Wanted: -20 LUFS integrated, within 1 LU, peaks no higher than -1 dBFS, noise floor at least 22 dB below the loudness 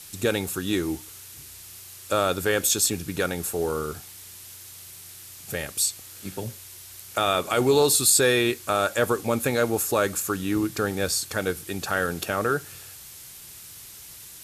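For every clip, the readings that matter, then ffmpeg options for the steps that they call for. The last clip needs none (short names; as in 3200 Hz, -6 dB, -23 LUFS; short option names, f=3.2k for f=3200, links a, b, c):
noise floor -44 dBFS; noise floor target -46 dBFS; loudness -24.0 LUFS; peak -6.0 dBFS; loudness target -20.0 LUFS
-> -af "afftdn=nr=6:nf=-44"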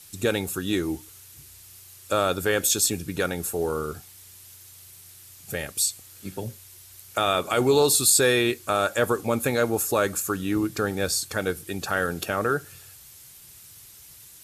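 noise floor -48 dBFS; loudness -24.0 LUFS; peak -5.5 dBFS; loudness target -20.0 LUFS
-> -af "volume=4dB"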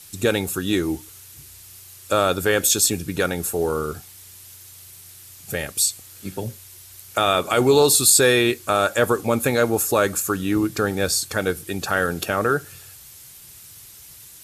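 loudness -20.0 LUFS; peak -1.5 dBFS; noise floor -44 dBFS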